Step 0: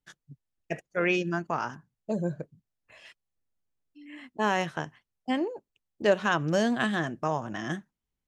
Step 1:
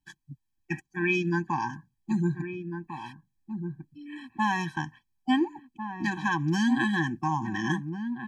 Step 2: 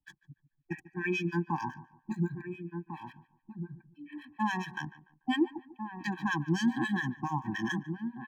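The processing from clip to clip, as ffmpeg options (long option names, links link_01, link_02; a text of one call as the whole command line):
ffmpeg -i in.wav -filter_complex "[0:a]alimiter=limit=-16.5dB:level=0:latency=1:release=312,asplit=2[link_01][link_02];[link_02]adelay=1399,volume=-8dB,highshelf=frequency=4000:gain=-31.5[link_03];[link_01][link_03]amix=inputs=2:normalize=0,afftfilt=real='re*eq(mod(floor(b*sr/1024/380),2),0)':imag='im*eq(mod(floor(b*sr/1024/380),2),0)':win_size=1024:overlap=0.75,volume=5dB" out.wav
ffmpeg -i in.wav -filter_complex "[0:a]acrossover=split=280|580|3500[link_01][link_02][link_03][link_04];[link_04]aeval=exprs='sgn(val(0))*max(abs(val(0))-0.001,0)':channel_layout=same[link_05];[link_01][link_02][link_03][link_05]amix=inputs=4:normalize=0,acrossover=split=1100[link_06][link_07];[link_06]aeval=exprs='val(0)*(1-1/2+1/2*cos(2*PI*7.2*n/s))':channel_layout=same[link_08];[link_07]aeval=exprs='val(0)*(1-1/2-1/2*cos(2*PI*7.2*n/s))':channel_layout=same[link_09];[link_08][link_09]amix=inputs=2:normalize=0,asplit=2[link_10][link_11];[link_11]adelay=146,lowpass=frequency=2100:poles=1,volume=-17dB,asplit=2[link_12][link_13];[link_13]adelay=146,lowpass=frequency=2100:poles=1,volume=0.35,asplit=2[link_14][link_15];[link_15]adelay=146,lowpass=frequency=2100:poles=1,volume=0.35[link_16];[link_10][link_12][link_14][link_16]amix=inputs=4:normalize=0" out.wav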